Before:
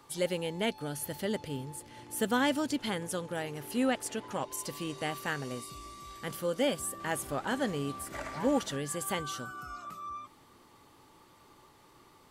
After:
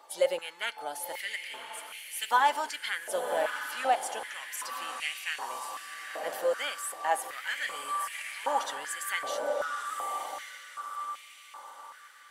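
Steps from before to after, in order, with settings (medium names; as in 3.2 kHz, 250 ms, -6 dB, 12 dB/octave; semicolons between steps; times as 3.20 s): coarse spectral quantiser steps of 15 dB; echo that smears into a reverb 1073 ms, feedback 40%, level -6.5 dB; on a send at -18 dB: reverberation RT60 1.4 s, pre-delay 3 ms; on the sum: step-sequenced high-pass 2.6 Hz 630–2400 Hz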